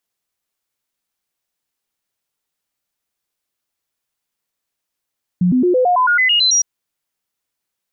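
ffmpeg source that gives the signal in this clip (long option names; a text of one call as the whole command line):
ffmpeg -f lavfi -i "aevalsrc='0.299*clip(min(mod(t,0.11),0.11-mod(t,0.11))/0.005,0,1)*sin(2*PI*179*pow(2,floor(t/0.11)/2)*mod(t,0.11))':duration=1.21:sample_rate=44100" out.wav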